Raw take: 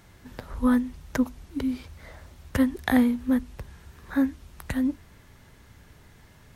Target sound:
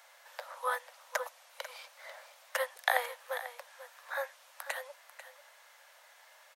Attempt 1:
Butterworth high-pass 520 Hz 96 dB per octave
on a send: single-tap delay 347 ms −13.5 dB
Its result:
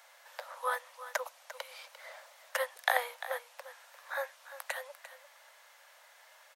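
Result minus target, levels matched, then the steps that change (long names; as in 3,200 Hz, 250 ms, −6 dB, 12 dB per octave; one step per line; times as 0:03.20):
echo 146 ms early
change: single-tap delay 493 ms −13.5 dB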